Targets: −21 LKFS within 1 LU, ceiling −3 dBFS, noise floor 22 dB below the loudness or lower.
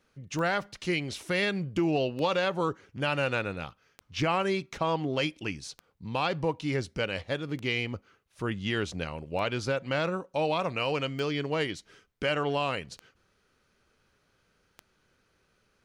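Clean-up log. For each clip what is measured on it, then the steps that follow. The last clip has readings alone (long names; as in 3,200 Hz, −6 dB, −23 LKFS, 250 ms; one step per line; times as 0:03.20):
number of clicks 9; integrated loudness −30.5 LKFS; sample peak −17.0 dBFS; target loudness −21.0 LKFS
→ click removal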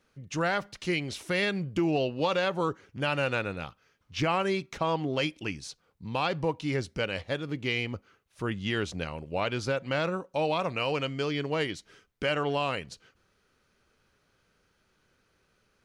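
number of clicks 0; integrated loudness −30.5 LKFS; sample peak −17.0 dBFS; target loudness −21.0 LKFS
→ level +9.5 dB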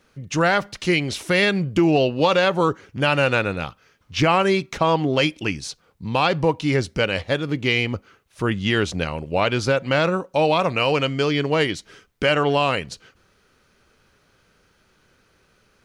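integrated loudness −21.0 LKFS; sample peak −7.5 dBFS; background noise floor −62 dBFS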